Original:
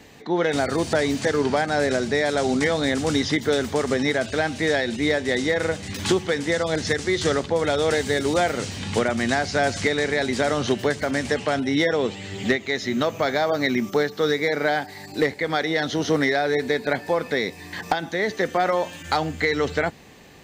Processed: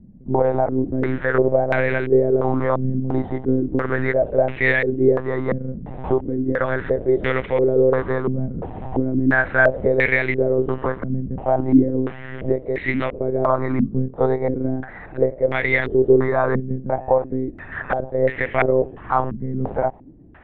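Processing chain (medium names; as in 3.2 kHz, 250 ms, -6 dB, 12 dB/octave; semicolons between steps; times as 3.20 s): harmonic-percussive split harmonic +6 dB; monotone LPC vocoder at 8 kHz 130 Hz; step-sequenced low-pass 2.9 Hz 210–2200 Hz; trim -4 dB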